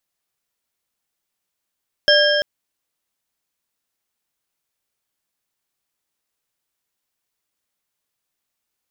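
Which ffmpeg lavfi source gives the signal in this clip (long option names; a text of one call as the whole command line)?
ffmpeg -f lavfi -i "aevalsrc='0.2*pow(10,-3*t/3.62)*sin(2*PI*591*t)+0.188*pow(10,-3*t/2.67)*sin(2*PI*1629.4*t)+0.178*pow(10,-3*t/2.182)*sin(2*PI*3193.8*t)+0.168*pow(10,-3*t/1.877)*sin(2*PI*5279.4*t)':duration=0.34:sample_rate=44100" out.wav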